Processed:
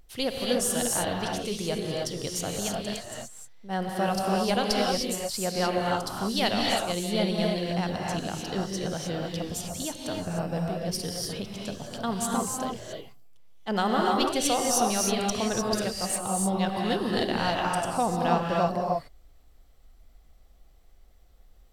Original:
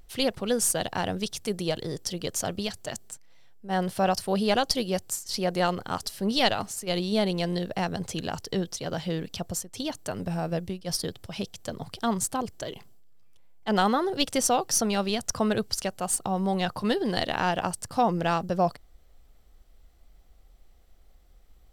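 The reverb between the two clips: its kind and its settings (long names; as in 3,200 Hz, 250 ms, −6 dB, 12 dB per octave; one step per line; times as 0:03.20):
reverb whose tail is shaped and stops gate 330 ms rising, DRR −1.5 dB
level −3.5 dB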